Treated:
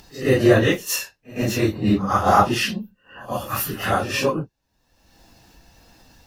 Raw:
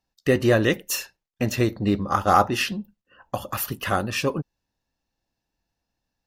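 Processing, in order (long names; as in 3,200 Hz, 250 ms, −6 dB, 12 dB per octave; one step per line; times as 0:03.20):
random phases in long frames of 100 ms
upward compression, threshold −33 dBFS
echo ahead of the sound 109 ms −17.5 dB
level +3 dB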